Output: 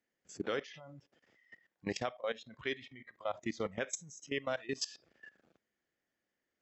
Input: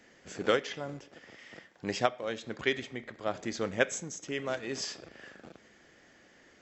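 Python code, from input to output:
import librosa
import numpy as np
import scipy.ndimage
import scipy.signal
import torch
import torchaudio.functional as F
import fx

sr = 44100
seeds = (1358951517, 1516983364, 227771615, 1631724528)

y = fx.noise_reduce_blind(x, sr, reduce_db=17)
y = fx.level_steps(y, sr, step_db=18)
y = y * 10.0 ** (2.0 / 20.0)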